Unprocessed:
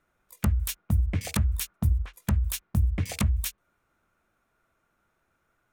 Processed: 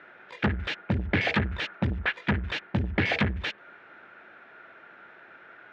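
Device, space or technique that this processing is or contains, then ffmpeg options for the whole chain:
overdrive pedal into a guitar cabinet: -filter_complex "[0:a]asplit=2[s0][s1];[s1]highpass=f=720:p=1,volume=39.8,asoftclip=type=tanh:threshold=0.2[s2];[s0][s2]amix=inputs=2:normalize=0,lowpass=f=2900:p=1,volume=0.501,highpass=110,equalizer=f=380:t=q:w=4:g=3,equalizer=f=1100:t=q:w=4:g=-8,equalizer=f=1700:t=q:w=4:g=7,lowpass=f=3500:w=0.5412,lowpass=f=3500:w=1.3066"

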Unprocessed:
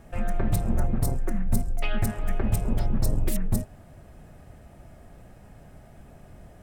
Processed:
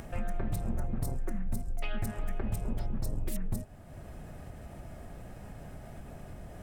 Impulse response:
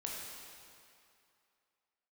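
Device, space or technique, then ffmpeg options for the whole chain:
upward and downward compression: -af "acompressor=mode=upward:threshold=0.02:ratio=2.5,acompressor=threshold=0.0501:ratio=4,volume=0.75"

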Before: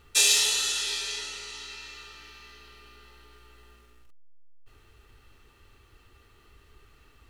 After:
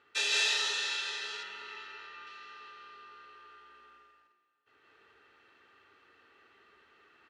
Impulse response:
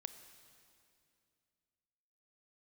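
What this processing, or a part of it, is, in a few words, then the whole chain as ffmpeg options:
station announcement: -filter_complex "[0:a]highpass=320,lowpass=3600,equalizer=f=1600:t=o:w=0.55:g=7,aecho=1:1:163.3|215.7:0.891|0.708[s0];[1:a]atrim=start_sample=2205[s1];[s0][s1]afir=irnorm=-1:irlink=0,asettb=1/sr,asplit=3[s2][s3][s4];[s2]atrim=end=1.434[s5];[s3]atrim=start=1.43:end=2.27,asetpts=PTS-STARTPTS,afade=t=in:d=0.004:c=qsin,afade=t=out:st=0.836:d=0.004:c=qsin,bass=f=250:g=4,treble=f=4000:g=-10[s6];[s4]atrim=start=2.266[s7];[s5][s6]acrossfade=d=0.004:c1=hsin:c2=qsin[s8];[s8][s7]acrossfade=d=0.004:c1=qsin:c2=hsin,volume=0.841"

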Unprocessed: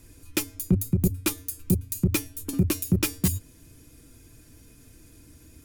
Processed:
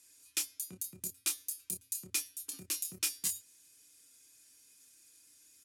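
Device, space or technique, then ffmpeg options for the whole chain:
piezo pickup straight into a mixer: -filter_complex "[0:a]lowpass=8400,aderivative,asplit=2[s0][s1];[s1]adelay=27,volume=0.422[s2];[s0][s2]amix=inputs=2:normalize=0"

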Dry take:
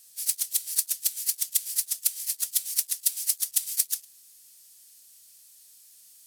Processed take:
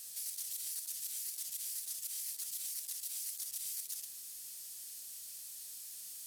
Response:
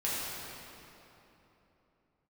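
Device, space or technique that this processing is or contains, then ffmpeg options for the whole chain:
de-esser from a sidechain: -filter_complex "[0:a]asplit=2[s0][s1];[s1]highpass=7000,apad=whole_len=276215[s2];[s0][s2]sidechaincompress=threshold=0.00631:ratio=16:attack=1.4:release=25,volume=2"

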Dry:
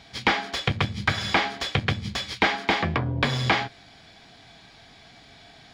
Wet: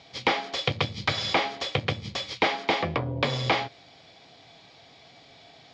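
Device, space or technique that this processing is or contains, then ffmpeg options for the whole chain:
car door speaker: -filter_complex "[0:a]asettb=1/sr,asplit=3[s0][s1][s2];[s0]atrim=end=0.584[s3];[s1]atrim=start=0.58:end=1.33,asetpts=PTS-STARTPTS,afade=t=in:d=0.004:c=qsin,afade=t=out:st=0.746:d=0.004:c=qsin,equalizer=f=4500:w=1.2:g=4.5[s4];[s2]atrim=start=1.326[s5];[s3][s4]acrossfade=d=0.004:c1=hsin:c2=qsin[s6];[s6][s5]acrossfade=d=0.004:c1=qsin:c2=hsin,highpass=110,equalizer=f=210:t=q:w=4:g=-7,equalizer=f=530:t=q:w=4:g=7,equalizer=f=1600:t=q:w=4:g=-8,lowpass=f=6800:w=0.5412,lowpass=f=6800:w=1.3066,volume=0.841"

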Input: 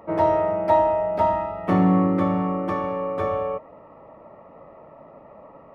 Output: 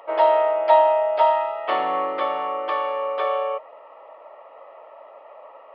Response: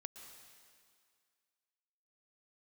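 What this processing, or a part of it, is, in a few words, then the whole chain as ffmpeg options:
musical greeting card: -af "aresample=11025,aresample=44100,highpass=f=530:w=0.5412,highpass=f=530:w=1.3066,equalizer=f=3100:t=o:w=0.46:g=10.5,volume=1.5"

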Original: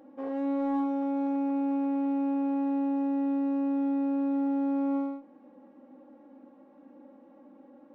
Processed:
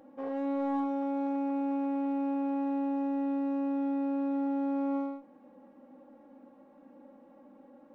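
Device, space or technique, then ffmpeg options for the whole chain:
low shelf boost with a cut just above: -af "lowshelf=f=95:g=7.5,equalizer=f=310:t=o:w=0.64:g=-5"

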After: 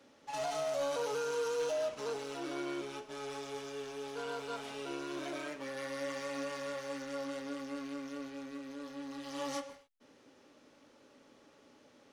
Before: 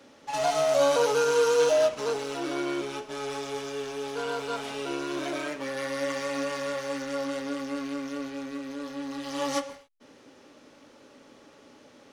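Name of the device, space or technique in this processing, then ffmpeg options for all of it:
clipper into limiter: -af "asoftclip=type=hard:threshold=0.158,alimiter=limit=0.1:level=0:latency=1:release=22,volume=0.376"

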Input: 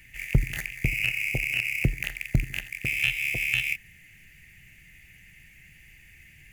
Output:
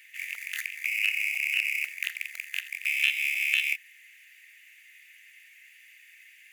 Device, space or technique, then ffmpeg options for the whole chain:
headphones lying on a table: -af "highpass=f=1400:w=0.5412,highpass=f=1400:w=1.3066,equalizer=f=3600:t=o:w=0.34:g=5"

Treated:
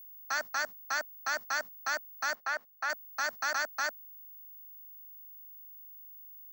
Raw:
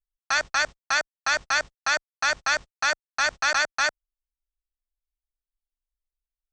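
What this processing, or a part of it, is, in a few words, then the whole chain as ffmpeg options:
old television with a line whistle: -filter_complex "[0:a]highpass=f=180:w=0.5412,highpass=f=180:w=1.3066,equalizer=f=240:t=q:w=4:g=4,equalizer=f=380:t=q:w=4:g=-7,equalizer=f=2500:t=q:w=4:g=-9,equalizer=f=3500:t=q:w=4:g=-10,lowpass=f=7700:w=0.5412,lowpass=f=7700:w=1.3066,aeval=exprs='val(0)+0.01*sin(2*PI*15625*n/s)':c=same,asettb=1/sr,asplit=3[s0][s1][s2];[s0]atrim=end=2.354[s3];[s1]atrim=start=2.35:end=2.9,asetpts=PTS-STARTPTS,afade=t=in:d=0.004:c=qsin,afade=t=out:st=0.546:d=0.004:c=qsin,bass=f=250:g=-13,treble=f=4000:g=-11[s4];[s2]atrim=start=2.896[s5];[s3][s4]acrossfade=d=0.004:c1=hsin:c2=qsin[s6];[s6][s5]acrossfade=d=0.004:c1=qsin:c2=hsin,volume=0.422"

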